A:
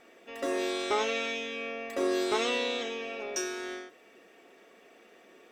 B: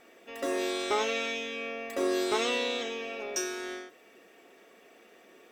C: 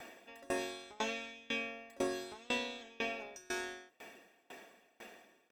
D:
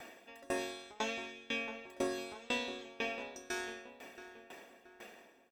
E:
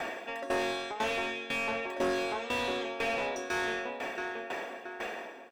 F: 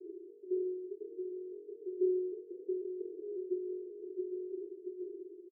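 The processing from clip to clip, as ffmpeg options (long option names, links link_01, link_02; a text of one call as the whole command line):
ffmpeg -i in.wav -af "highshelf=frequency=11000:gain=8.5" out.wav
ffmpeg -i in.wav -filter_complex "[0:a]aecho=1:1:1.2:0.43,acrossover=split=180[link_01][link_02];[link_02]acompressor=threshold=-39dB:ratio=6[link_03];[link_01][link_03]amix=inputs=2:normalize=0,aeval=exprs='val(0)*pow(10,-28*if(lt(mod(2*n/s,1),2*abs(2)/1000),1-mod(2*n/s,1)/(2*abs(2)/1000),(mod(2*n/s,1)-2*abs(2)/1000)/(1-2*abs(2)/1000))/20)':channel_layout=same,volume=8.5dB" out.wav
ffmpeg -i in.wav -filter_complex "[0:a]asplit=2[link_01][link_02];[link_02]adelay=676,lowpass=frequency=2100:poles=1,volume=-11.5dB,asplit=2[link_03][link_04];[link_04]adelay=676,lowpass=frequency=2100:poles=1,volume=0.47,asplit=2[link_05][link_06];[link_06]adelay=676,lowpass=frequency=2100:poles=1,volume=0.47,asplit=2[link_07][link_08];[link_08]adelay=676,lowpass=frequency=2100:poles=1,volume=0.47,asplit=2[link_09][link_10];[link_10]adelay=676,lowpass=frequency=2100:poles=1,volume=0.47[link_11];[link_01][link_03][link_05][link_07][link_09][link_11]amix=inputs=6:normalize=0" out.wav
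ffmpeg -i in.wav -filter_complex "[0:a]asplit=2[link_01][link_02];[link_02]highpass=frequency=720:poles=1,volume=28dB,asoftclip=type=tanh:threshold=-21.5dB[link_03];[link_01][link_03]amix=inputs=2:normalize=0,lowpass=frequency=1300:poles=1,volume=-6dB,volume=1dB" out.wav
ffmpeg -i in.wav -filter_complex "[0:a]asuperpass=centerf=370:order=8:qfactor=4.4,asplit=2[link_01][link_02];[link_02]adelay=37,volume=-9dB[link_03];[link_01][link_03]amix=inputs=2:normalize=0,aecho=1:1:805:0.316,volume=5dB" out.wav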